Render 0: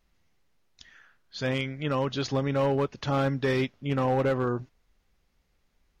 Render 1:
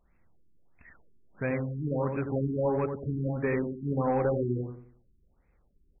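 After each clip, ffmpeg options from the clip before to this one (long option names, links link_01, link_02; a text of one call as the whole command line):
ffmpeg -i in.wav -filter_complex "[0:a]acompressor=threshold=-37dB:ratio=1.5,asplit=2[link_01][link_02];[link_02]adelay=89,lowpass=frequency=950:poles=1,volume=-4.5dB,asplit=2[link_03][link_04];[link_04]adelay=89,lowpass=frequency=950:poles=1,volume=0.4,asplit=2[link_05][link_06];[link_06]adelay=89,lowpass=frequency=950:poles=1,volume=0.4,asplit=2[link_07][link_08];[link_08]adelay=89,lowpass=frequency=950:poles=1,volume=0.4,asplit=2[link_09][link_10];[link_10]adelay=89,lowpass=frequency=950:poles=1,volume=0.4[link_11];[link_03][link_05][link_07][link_09][link_11]amix=inputs=5:normalize=0[link_12];[link_01][link_12]amix=inputs=2:normalize=0,afftfilt=real='re*lt(b*sr/1024,400*pow(2700/400,0.5+0.5*sin(2*PI*1.5*pts/sr)))':imag='im*lt(b*sr/1024,400*pow(2700/400,0.5+0.5*sin(2*PI*1.5*pts/sr)))':win_size=1024:overlap=0.75,volume=2.5dB" out.wav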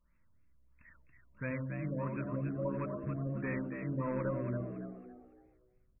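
ffmpeg -i in.wav -filter_complex "[0:a]asuperstop=centerf=760:order=20:qfactor=3.3,equalizer=frequency=410:width=2.9:gain=-12,asplit=2[link_01][link_02];[link_02]asplit=4[link_03][link_04][link_05][link_06];[link_03]adelay=279,afreqshift=63,volume=-6.5dB[link_07];[link_04]adelay=558,afreqshift=126,volume=-16.1dB[link_08];[link_05]adelay=837,afreqshift=189,volume=-25.8dB[link_09];[link_06]adelay=1116,afreqshift=252,volume=-35.4dB[link_10];[link_07][link_08][link_09][link_10]amix=inputs=4:normalize=0[link_11];[link_01][link_11]amix=inputs=2:normalize=0,volume=-5.5dB" out.wav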